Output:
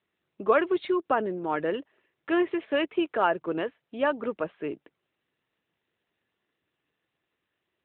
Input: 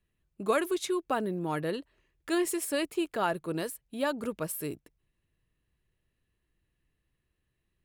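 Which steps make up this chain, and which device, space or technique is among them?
0:02.51–0:03.20: dynamic equaliser 7,800 Hz, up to +5 dB, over −51 dBFS, Q 0.7
telephone (band-pass filter 300–3,100 Hz; level +6 dB; AMR narrowband 12.2 kbit/s 8,000 Hz)

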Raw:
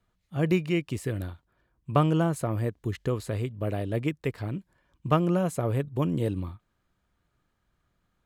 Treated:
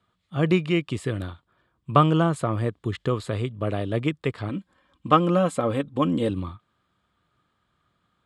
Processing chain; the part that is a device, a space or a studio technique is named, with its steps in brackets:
car door speaker (loudspeaker in its box 85–9,000 Hz, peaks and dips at 1,200 Hz +7 dB, 3,400 Hz +7 dB, 6,100 Hz −8 dB)
0:04.49–0:06.30: comb filter 3.8 ms, depth 63%
level +3.5 dB

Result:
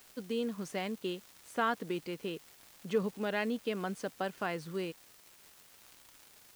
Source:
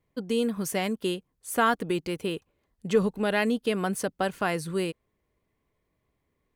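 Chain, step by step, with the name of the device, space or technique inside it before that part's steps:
78 rpm shellac record (band-pass filter 140–5,700 Hz; surface crackle 280 per second −36 dBFS; white noise bed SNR 23 dB)
level −8 dB

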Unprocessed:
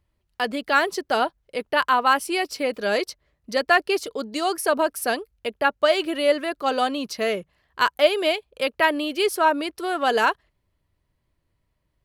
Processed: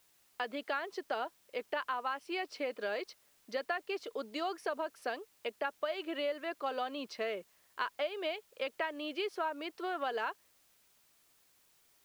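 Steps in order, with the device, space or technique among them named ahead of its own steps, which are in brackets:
baby monitor (band-pass filter 330–3,600 Hz; downward compressor, threshold −25 dBFS, peak gain reduction 12.5 dB; white noise bed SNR 30 dB)
level −7.5 dB

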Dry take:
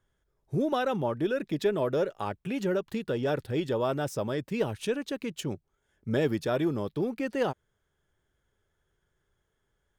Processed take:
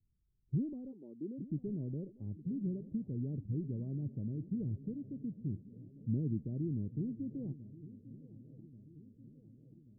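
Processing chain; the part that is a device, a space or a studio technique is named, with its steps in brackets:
0:00.91–0:01.41: high-pass filter 430 Hz → 170 Hz 24 dB per octave
the neighbour's flat through the wall (low-pass filter 250 Hz 24 dB per octave; parametric band 90 Hz +3.5 dB 0.77 octaves)
feedback echo with a long and a short gap by turns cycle 1,134 ms, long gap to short 3 to 1, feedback 57%, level −17 dB
level −2.5 dB

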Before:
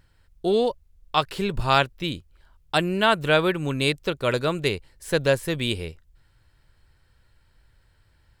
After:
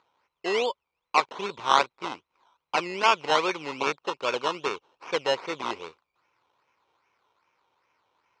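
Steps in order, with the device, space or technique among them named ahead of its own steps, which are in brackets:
circuit-bent sampling toy (sample-and-hold swept by an LFO 15×, swing 60% 2.5 Hz; loudspeaker in its box 510–5,300 Hz, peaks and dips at 650 Hz −6 dB, 1,000 Hz +6 dB, 1,700 Hz −9 dB, 2,400 Hz +4 dB, 4,700 Hz −4 dB)
0:03.76–0:05.14: notch filter 2,000 Hz, Q 8.9

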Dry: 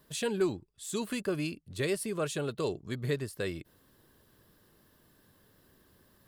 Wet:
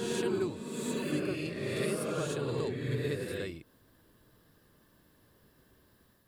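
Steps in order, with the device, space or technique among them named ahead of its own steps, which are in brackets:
reverse reverb (reversed playback; convolution reverb RT60 2.3 s, pre-delay 40 ms, DRR −4 dB; reversed playback)
level −5.5 dB

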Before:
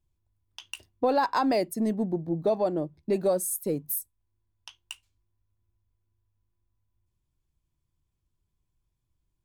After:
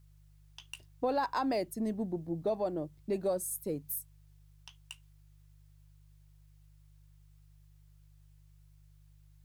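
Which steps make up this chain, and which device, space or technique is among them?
video cassette with head-switching buzz (hum with harmonics 50 Hz, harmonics 3, −53 dBFS −4 dB per octave; white noise bed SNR 39 dB)
level −7 dB

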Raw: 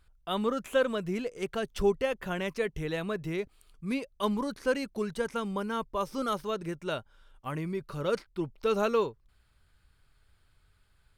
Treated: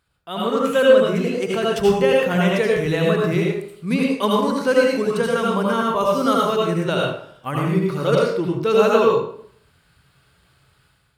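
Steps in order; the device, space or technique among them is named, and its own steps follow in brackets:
far laptop microphone (convolution reverb RT60 0.60 s, pre-delay 71 ms, DRR −2.5 dB; high-pass filter 110 Hz 12 dB per octave; automatic gain control gain up to 9 dB)

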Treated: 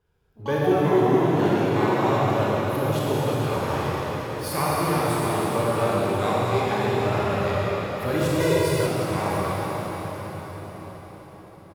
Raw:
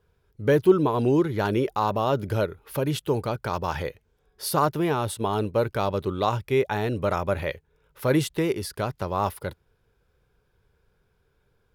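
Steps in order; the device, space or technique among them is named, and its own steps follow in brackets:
shimmer-style reverb (pitch-shifted copies added +12 semitones −10 dB; convolution reverb RT60 5.8 s, pre-delay 26 ms, DRR −7.5 dB)
0:08.40–0:08.87: comb filter 2 ms, depth 100%
level −6.5 dB

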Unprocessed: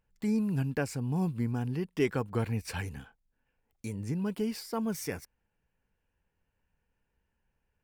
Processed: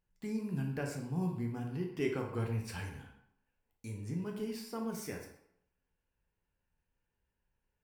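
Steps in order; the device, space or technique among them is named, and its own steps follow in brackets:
bathroom (convolution reverb RT60 0.75 s, pre-delay 9 ms, DRR 0.5 dB)
level −8 dB

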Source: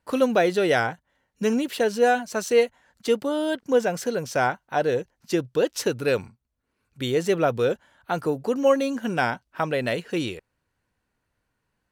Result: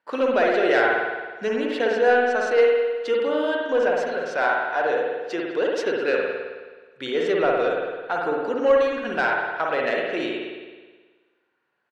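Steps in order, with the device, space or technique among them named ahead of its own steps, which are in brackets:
intercom (band-pass filter 370–3,700 Hz; parametric band 1,600 Hz +4 dB 0.58 octaves; soft clipping −12.5 dBFS, distortion −19 dB)
0:04.08–0:05.52: low-shelf EQ 330 Hz −6 dB
slap from a distant wall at 36 metres, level −19 dB
spring reverb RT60 1.4 s, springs 53 ms, chirp 45 ms, DRR −1.5 dB

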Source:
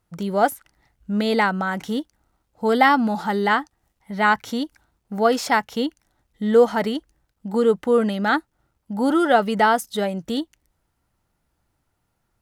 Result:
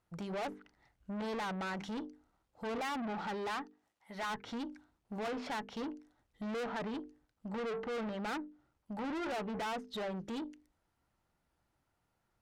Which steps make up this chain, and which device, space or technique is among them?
mains-hum notches 50/100/150/200/250/300/350/400/450 Hz
0:03.49–0:04.29: high-pass filter 200 Hz → 710 Hz 6 dB per octave
treble cut that deepens with the level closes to 1,700 Hz, closed at −17 dBFS
tube preamp driven hard (tube saturation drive 31 dB, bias 0.25; low-shelf EQ 150 Hz −5 dB; high-shelf EQ 6,300 Hz −7.5 dB)
level −4.5 dB

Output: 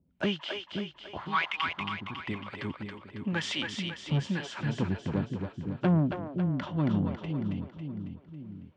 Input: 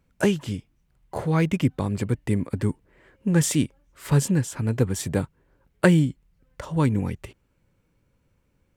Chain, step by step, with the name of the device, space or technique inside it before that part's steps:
0:01.17–0:02.28: low shelf with overshoot 740 Hz −13 dB, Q 3
guitar amplifier with harmonic tremolo (two-band tremolo in antiphase 1 Hz, depth 100%, crossover 560 Hz; soft clipping −21 dBFS, distortion −10 dB; loudspeaker in its box 92–4,300 Hz, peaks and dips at 120 Hz −8 dB, 470 Hz −8 dB, 3,100 Hz +6 dB)
echo with a time of its own for lows and highs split 370 Hz, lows 516 ms, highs 275 ms, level −4.5 dB
level +2 dB

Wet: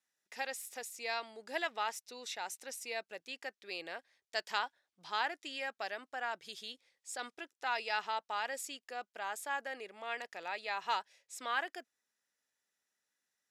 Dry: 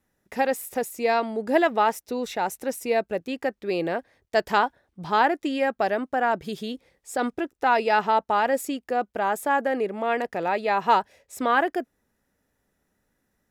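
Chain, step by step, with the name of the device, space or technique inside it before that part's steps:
piezo pickup straight into a mixer (low-pass filter 5,600 Hz 12 dB per octave; first difference)
level +2 dB

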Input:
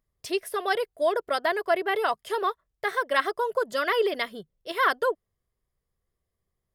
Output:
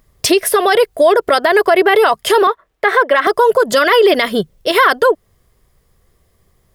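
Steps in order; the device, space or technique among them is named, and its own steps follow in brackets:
loud club master (downward compressor 1.5 to 1, threshold −32 dBFS, peak gain reduction 5.5 dB; hard clipping −17 dBFS, distortion −37 dB; boost into a limiter +26.5 dB)
0:02.47–0:03.27: three-way crossover with the lows and the highs turned down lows −14 dB, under 250 Hz, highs −12 dB, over 3,200 Hz
level −2 dB

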